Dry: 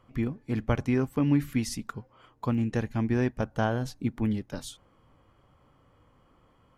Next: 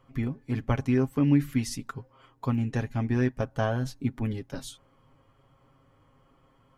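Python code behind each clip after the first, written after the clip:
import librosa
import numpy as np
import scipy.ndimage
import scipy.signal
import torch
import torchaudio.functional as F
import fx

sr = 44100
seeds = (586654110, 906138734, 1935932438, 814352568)

y = x + 0.59 * np.pad(x, (int(7.4 * sr / 1000.0), 0))[:len(x)]
y = y * librosa.db_to_amplitude(-1.5)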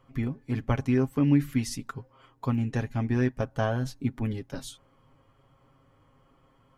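y = x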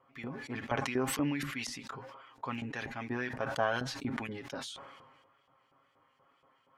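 y = fx.wow_flutter(x, sr, seeds[0], rate_hz=2.1, depth_cents=27.0)
y = fx.filter_lfo_bandpass(y, sr, shape='saw_up', hz=4.2, low_hz=720.0, high_hz=4400.0, q=0.8)
y = fx.sustainer(y, sr, db_per_s=40.0)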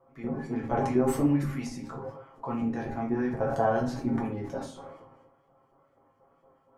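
y = fx.curve_eq(x, sr, hz=(710.0, 3300.0, 6600.0), db=(0, -19, -10))
y = fx.room_shoebox(y, sr, seeds[1], volume_m3=35.0, walls='mixed', distance_m=0.76)
y = y * librosa.db_to_amplitude(3.0)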